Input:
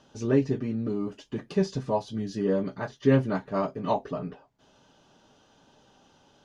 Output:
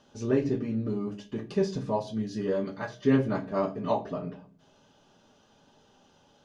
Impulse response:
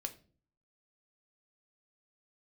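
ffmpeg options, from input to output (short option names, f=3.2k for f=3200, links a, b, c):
-filter_complex "[0:a]asettb=1/sr,asplit=3[a][b][c];[a]atrim=end=2.414[d];[b]atrim=start=2.41:end=3.01,asetpts=PTS-STARTPTS,afade=t=in:d=0.004:c=qsin,afade=t=out:st=0.596:d=0.004:c=qsin,tiltshelf=f=970:g=-3.5[e];[c]atrim=start=3.006[f];[d][e]acrossfade=d=0.004:c1=hsin:c2=qsin[g];[g][f]acrossfade=d=0.004:c1=qsin:c2=hsin[h];[1:a]atrim=start_sample=2205[i];[h][i]afir=irnorm=-1:irlink=0"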